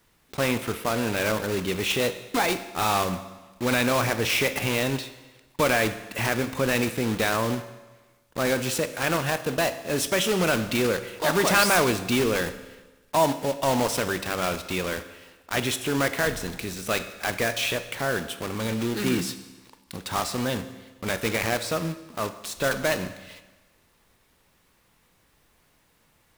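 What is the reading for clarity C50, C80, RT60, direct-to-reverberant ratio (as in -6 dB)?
12.0 dB, 14.0 dB, 1.2 s, 10.0 dB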